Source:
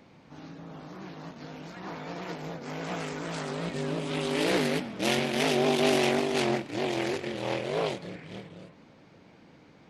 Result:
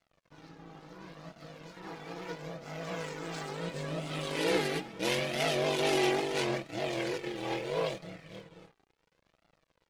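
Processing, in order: comb 6.1 ms, depth 52%; crossover distortion -49.5 dBFS; flange 0.74 Hz, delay 1.4 ms, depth 1.2 ms, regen +38%

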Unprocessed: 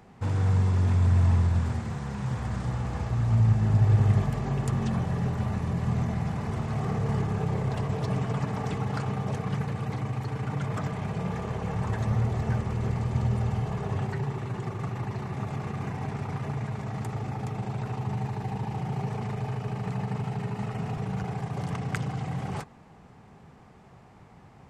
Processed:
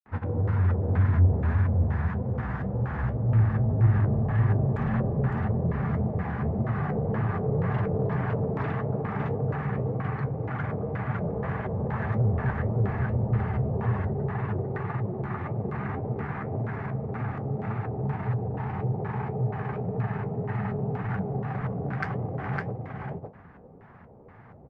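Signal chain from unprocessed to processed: granulator, pitch spread up and down by 0 st; on a send: delay 558 ms -3 dB; on the sum: LFO low-pass square 2.1 Hz 540–1700 Hz; saturation -15.5 dBFS, distortion -20 dB; flange 1.8 Hz, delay 7.7 ms, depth 7.9 ms, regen +56%; trim +4.5 dB

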